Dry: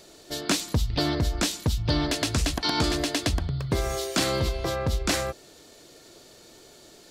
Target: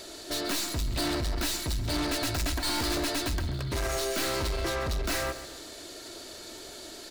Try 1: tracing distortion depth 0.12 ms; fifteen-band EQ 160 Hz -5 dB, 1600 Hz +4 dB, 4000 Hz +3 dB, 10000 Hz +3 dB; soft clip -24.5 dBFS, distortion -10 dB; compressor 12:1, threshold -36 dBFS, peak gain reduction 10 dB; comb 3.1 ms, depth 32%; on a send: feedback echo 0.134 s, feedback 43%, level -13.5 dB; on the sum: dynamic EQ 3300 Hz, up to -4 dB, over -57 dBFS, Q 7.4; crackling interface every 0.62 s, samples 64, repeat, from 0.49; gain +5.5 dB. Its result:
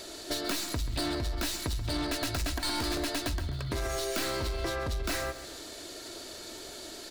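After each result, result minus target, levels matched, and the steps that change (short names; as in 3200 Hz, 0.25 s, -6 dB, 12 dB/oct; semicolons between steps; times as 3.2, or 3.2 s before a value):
compressor: peak gain reduction +10 dB; soft clip: distortion -6 dB
remove: compressor 12:1, threshold -36 dBFS, peak gain reduction 10 dB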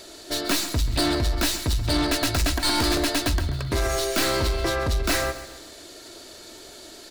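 soft clip: distortion -6 dB
change: soft clip -34 dBFS, distortion -5 dB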